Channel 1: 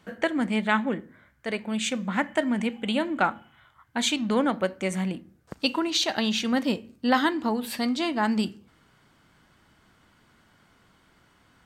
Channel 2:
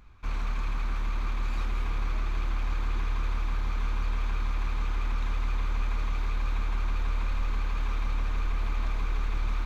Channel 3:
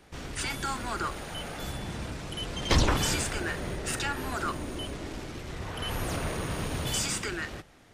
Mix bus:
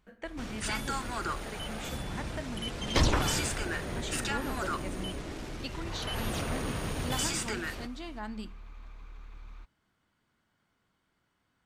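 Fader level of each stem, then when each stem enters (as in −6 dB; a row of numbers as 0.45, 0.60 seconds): −15.5, −19.0, −2.0 decibels; 0.00, 0.00, 0.25 seconds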